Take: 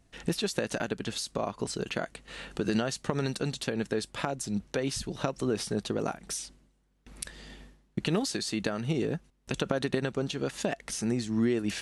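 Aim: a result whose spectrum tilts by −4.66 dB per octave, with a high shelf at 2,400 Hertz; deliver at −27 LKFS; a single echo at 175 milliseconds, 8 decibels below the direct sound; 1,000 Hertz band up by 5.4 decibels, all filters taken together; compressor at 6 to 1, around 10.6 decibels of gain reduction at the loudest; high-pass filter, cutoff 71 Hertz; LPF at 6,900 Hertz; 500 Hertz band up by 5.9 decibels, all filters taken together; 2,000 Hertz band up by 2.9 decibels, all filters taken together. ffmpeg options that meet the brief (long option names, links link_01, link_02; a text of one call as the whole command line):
ffmpeg -i in.wav -af "highpass=71,lowpass=6900,equalizer=frequency=500:width_type=o:gain=6.5,equalizer=frequency=1000:width_type=o:gain=5,equalizer=frequency=2000:width_type=o:gain=5.5,highshelf=frequency=2400:gain=-8,acompressor=threshold=-34dB:ratio=6,aecho=1:1:175:0.398,volume=12dB" out.wav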